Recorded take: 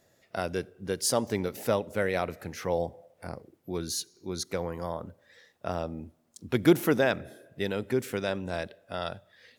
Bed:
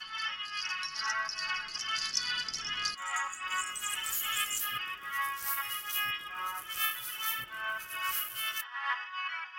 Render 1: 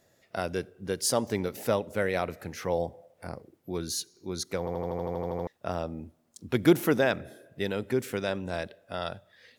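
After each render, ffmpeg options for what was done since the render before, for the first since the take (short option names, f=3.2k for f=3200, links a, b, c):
-filter_complex "[0:a]asplit=12[a][b][c][d][e][f][g][h][i][j][k][l];[a]atrim=end=4.672[m];[b]atrim=start=4.588:end=4.672[n];[c]atrim=start=4.588:end=4.672[o];[d]atrim=start=4.588:end=4.672[p];[e]atrim=start=4.588:end=4.672[q];[f]atrim=start=4.588:end=4.672[r];[g]atrim=start=4.588:end=4.672[s];[h]atrim=start=4.588:end=4.672[t];[i]atrim=start=4.588:end=4.672[u];[j]atrim=start=4.588:end=4.672[v];[k]atrim=start=4.588:end=4.672[w];[l]atrim=start=5.468[x];[m][n]acrossfade=d=0.004:c1=hsin:c2=hsin[y];[y][o]acrossfade=d=0.004:c1=hsin:c2=hsin[z];[z][p]acrossfade=d=0.004:c1=hsin:c2=hsin[aa];[aa][q]acrossfade=d=0.004:c1=hsin:c2=hsin[ab];[ab][r]acrossfade=d=0.004:c1=hsin:c2=hsin[ac];[ac][s]acrossfade=d=0.004:c1=hsin:c2=hsin[ad];[ad][t]acrossfade=d=0.004:c1=hsin:c2=hsin[ae];[ae][u]acrossfade=d=0.004:c1=hsin:c2=hsin[af];[af][v]acrossfade=d=0.004:c1=hsin:c2=hsin[ag];[ag][w]acrossfade=d=0.004:c1=hsin:c2=hsin[ah];[ah][x]acrossfade=d=0.004:c1=hsin:c2=hsin"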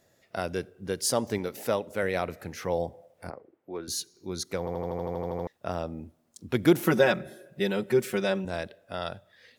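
-filter_complex "[0:a]asettb=1/sr,asplit=3[a][b][c];[a]atrim=end=1.384[d];[b]atrim=start=1.38:end=2.03,asetpts=PTS-STARTPTS,afade=t=in:d=0.004:c=qsin,afade=t=out:st=0.646:d=0.004:c=qsin,lowshelf=f=150:g=-8[e];[c]atrim=start=2.026[f];[d][e]acrossfade=d=0.004:c1=hsin:c2=qsin[g];[g][f]acrossfade=d=0.004:c1=qsin:c2=hsin,asettb=1/sr,asplit=3[h][i][j];[h]atrim=end=3.304[k];[i]atrim=start=3.3:end=3.88,asetpts=PTS-STARTPTS,afade=t=in:d=0.004:c=qsin,afade=t=out:st=0.576:d=0.004:c=qsin,acrossover=split=300 2500:gain=0.178 1 0.0891[l][m][n];[l][m][n]amix=inputs=3:normalize=0[o];[j]atrim=start=3.876[p];[k][o]acrossfade=d=0.004:c1=hsin:c2=qsin[q];[q][p]acrossfade=d=0.004:c1=qsin:c2=hsin,asettb=1/sr,asplit=3[r][s][t];[r]atrim=end=6.864[u];[s]atrim=start=6.86:end=8.45,asetpts=PTS-STARTPTS,afade=t=in:d=0.004:c=qsin,afade=t=out:st=1.586:d=0.004:c=qsin,aecho=1:1:5.4:0.96,atrim=end_sample=70119[v];[t]atrim=start=8.446[w];[u][v]acrossfade=d=0.004:c1=hsin:c2=qsin[x];[x][w]acrossfade=d=0.004:c1=qsin:c2=hsin"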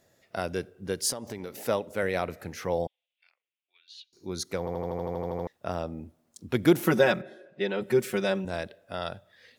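-filter_complex "[0:a]asettb=1/sr,asplit=3[a][b][c];[a]atrim=end=1.114[d];[b]atrim=start=1.11:end=1.54,asetpts=PTS-STARTPTS,afade=t=in:d=0.004:c=qsin,afade=t=out:st=0.426:d=0.004:c=qsin,acompressor=threshold=-33dB:ratio=5:attack=3.2:release=140:knee=1:detection=peak[e];[c]atrim=start=1.536[f];[d][e]acrossfade=d=0.004:c1=hsin:c2=qsin[g];[g][f]acrossfade=d=0.004:c1=qsin:c2=hsin,asettb=1/sr,asplit=3[h][i][j];[h]atrim=end=2.874[k];[i]atrim=start=2.87:end=4.13,asetpts=PTS-STARTPTS,afade=t=in:d=0.004:c=qsin,afade=t=out:st=1.256:d=0.004:c=qsin,asuperpass=centerf=3000:order=4:qfactor=2.6[l];[j]atrim=start=4.126[m];[k][l]acrossfade=d=0.004:c1=hsin:c2=qsin[n];[n][m]acrossfade=d=0.004:c1=qsin:c2=hsin,asplit=3[o][p][q];[o]afade=t=out:st=7.21:d=0.02[r];[p]highpass=250,lowpass=3.7k,afade=t=in:st=7.21:d=0.02,afade=t=out:st=7.8:d=0.02[s];[q]afade=t=in:st=7.8:d=0.02[t];[r][s][t]amix=inputs=3:normalize=0"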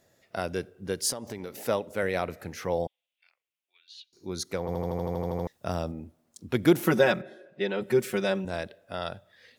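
-filter_complex "[0:a]asettb=1/sr,asplit=3[a][b][c];[a]atrim=end=4.684[d];[b]atrim=start=4.68:end=5.92,asetpts=PTS-STARTPTS,afade=t=in:d=0.004:c=qsin,afade=t=out:st=1.236:d=0.004:c=qsin,bass=f=250:g=5,treble=f=4k:g=8[e];[c]atrim=start=5.916[f];[d][e]acrossfade=d=0.004:c1=hsin:c2=qsin[g];[g][f]acrossfade=d=0.004:c1=qsin:c2=hsin"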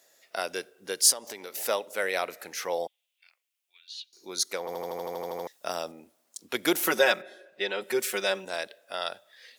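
-af "highpass=460,highshelf=f=2.5k:g=9.5"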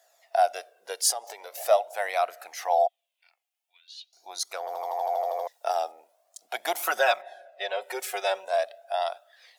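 -af "flanger=delay=0.6:depth=1.9:regen=33:speed=0.43:shape=triangular,highpass=f=700:t=q:w=8.6"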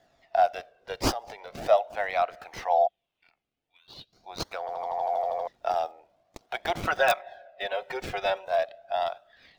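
-filter_complex "[0:a]acrossover=split=1500|5000[a][b][c];[b]aeval=exprs='(mod(8.91*val(0)+1,2)-1)/8.91':c=same[d];[c]acrusher=samples=34:mix=1:aa=0.000001:lfo=1:lforange=34:lforate=1.5[e];[a][d][e]amix=inputs=3:normalize=0"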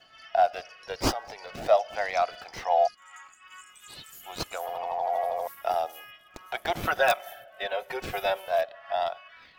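-filter_complex "[1:a]volume=-14.5dB[a];[0:a][a]amix=inputs=2:normalize=0"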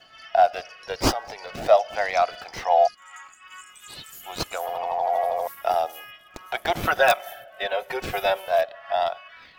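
-af "volume=4.5dB"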